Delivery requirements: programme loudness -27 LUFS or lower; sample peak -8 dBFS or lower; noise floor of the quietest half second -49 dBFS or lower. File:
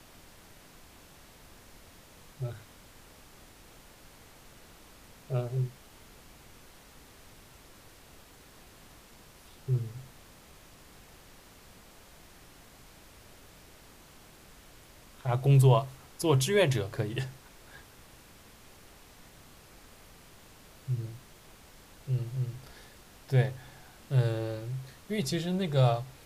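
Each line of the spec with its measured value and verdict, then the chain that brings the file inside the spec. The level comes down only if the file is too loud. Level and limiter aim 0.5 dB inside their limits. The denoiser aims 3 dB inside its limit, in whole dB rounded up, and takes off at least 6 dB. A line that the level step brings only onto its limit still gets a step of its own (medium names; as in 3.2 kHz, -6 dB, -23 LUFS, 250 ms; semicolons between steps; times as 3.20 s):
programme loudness -30.0 LUFS: pass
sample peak -11.5 dBFS: pass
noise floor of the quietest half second -54 dBFS: pass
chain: none needed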